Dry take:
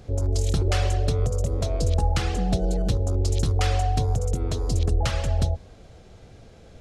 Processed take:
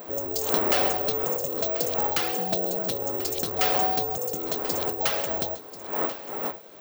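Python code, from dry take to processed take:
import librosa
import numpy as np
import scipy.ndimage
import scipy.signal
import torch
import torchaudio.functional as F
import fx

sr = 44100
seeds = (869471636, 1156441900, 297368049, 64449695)

p1 = fx.dmg_wind(x, sr, seeds[0], corner_hz=620.0, level_db=-35.0)
p2 = scipy.signal.sosfilt(scipy.signal.butter(2, 360.0, 'highpass', fs=sr, output='sos'), p1)
p3 = p2 + fx.echo_single(p2, sr, ms=1037, db=-14.5, dry=0)
p4 = (np.kron(scipy.signal.resample_poly(p3, 1, 2), np.eye(2)[0]) * 2)[:len(p3)]
y = F.gain(torch.from_numpy(p4), 2.0).numpy()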